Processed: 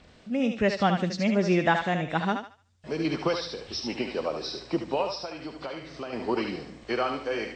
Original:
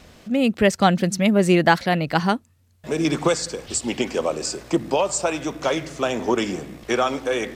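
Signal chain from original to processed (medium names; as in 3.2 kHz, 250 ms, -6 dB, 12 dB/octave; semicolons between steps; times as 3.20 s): knee-point frequency compression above 2.5 kHz 1.5:1; 5.06–6.13 s: compression 6:1, threshold -27 dBFS, peak gain reduction 10 dB; thinning echo 74 ms, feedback 32%, high-pass 540 Hz, level -5 dB; trim -7 dB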